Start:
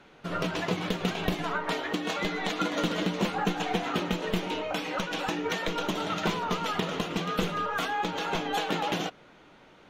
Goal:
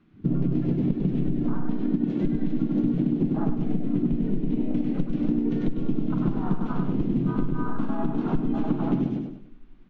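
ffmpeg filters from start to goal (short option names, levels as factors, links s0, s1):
-filter_complex "[0:a]lowpass=5000,lowshelf=f=400:t=q:w=3:g=11,asplit=2[s0][s1];[s1]aecho=0:1:91:0.126[s2];[s0][s2]amix=inputs=2:normalize=0,asubboost=boost=3.5:cutoff=61,afwtdn=0.0398,alimiter=limit=0.335:level=0:latency=1:release=125,asplit=2[s3][s4];[s4]aecho=0:1:99|198|297|396|495:0.668|0.261|0.102|0.0396|0.0155[s5];[s3][s5]amix=inputs=2:normalize=0,aeval=exprs='0.447*(cos(1*acos(clip(val(0)/0.447,-1,1)))-cos(1*PI/2))+0.00501*(cos(7*acos(clip(val(0)/0.447,-1,1)))-cos(7*PI/2))':c=same,asplit=2[s6][s7];[s7]asetrate=35002,aresample=44100,atempo=1.25992,volume=1[s8];[s6][s8]amix=inputs=2:normalize=0,acompressor=threshold=0.1:ratio=6"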